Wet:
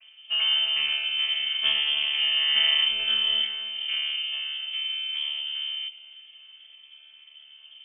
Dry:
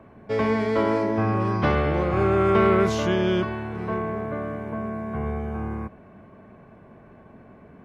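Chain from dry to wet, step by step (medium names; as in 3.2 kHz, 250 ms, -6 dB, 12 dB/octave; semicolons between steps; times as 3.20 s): vocoder on a held chord bare fifth, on D3; treble shelf 2.3 kHz +7.5 dB; on a send: thinning echo 264 ms, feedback 47%, level -17 dB; on the sum: frequency inversion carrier 3.3 kHz; trim -2.5 dB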